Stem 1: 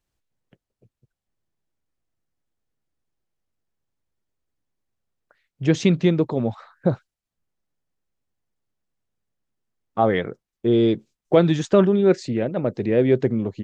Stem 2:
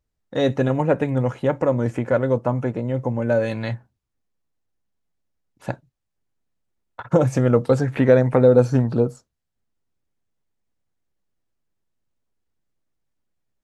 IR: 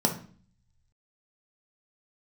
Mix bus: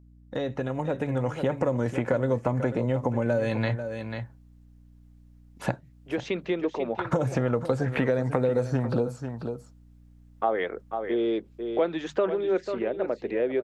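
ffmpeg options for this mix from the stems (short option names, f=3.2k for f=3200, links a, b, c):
-filter_complex "[0:a]acrossover=split=310 3300:gain=0.0708 1 0.2[a][b][c];[a][b][c]amix=inputs=3:normalize=0,bandreject=f=50:t=h:w=6,bandreject=f=100:t=h:w=6,bandreject=f=150:t=h:w=6,bandreject=f=200:t=h:w=6,adelay=450,volume=-8.5dB,asplit=2[d][e];[e]volume=-11.5dB[f];[1:a]acrossover=split=510|4200[g][h][i];[g]acompressor=threshold=-27dB:ratio=4[j];[h]acompressor=threshold=-29dB:ratio=4[k];[i]acompressor=threshold=-57dB:ratio=4[l];[j][k][l]amix=inputs=3:normalize=0,volume=-2.5dB,asplit=3[m][n][o];[n]volume=-13.5dB[p];[o]apad=whole_len=620981[q];[d][q]sidechaincompress=threshold=-37dB:ratio=8:attack=46:release=1240[r];[f][p]amix=inputs=2:normalize=0,aecho=0:1:492:1[s];[r][m][s]amix=inputs=3:normalize=0,dynaudnorm=f=220:g=11:m=12dB,aeval=exprs='val(0)+0.00251*(sin(2*PI*60*n/s)+sin(2*PI*2*60*n/s)/2+sin(2*PI*3*60*n/s)/3+sin(2*PI*4*60*n/s)/4+sin(2*PI*5*60*n/s)/5)':c=same,acompressor=threshold=-28dB:ratio=2"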